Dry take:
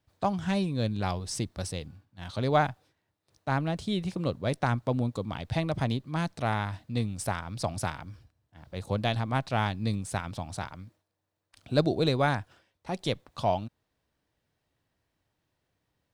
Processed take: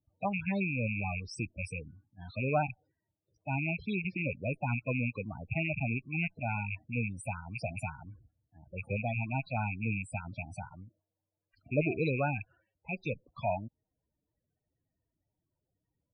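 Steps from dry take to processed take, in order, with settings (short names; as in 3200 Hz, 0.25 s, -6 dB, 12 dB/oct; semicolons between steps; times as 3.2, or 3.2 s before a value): rattling part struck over -34 dBFS, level -16 dBFS; loudest bins only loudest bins 16; gain -4.5 dB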